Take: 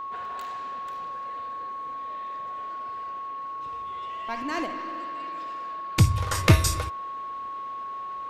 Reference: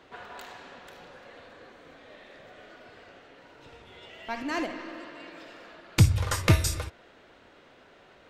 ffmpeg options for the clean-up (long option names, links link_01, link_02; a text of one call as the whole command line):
ffmpeg -i in.wav -af "bandreject=frequency=1100:width=30,asetnsamples=nb_out_samples=441:pad=0,asendcmd='6.35 volume volume -3.5dB',volume=0dB" out.wav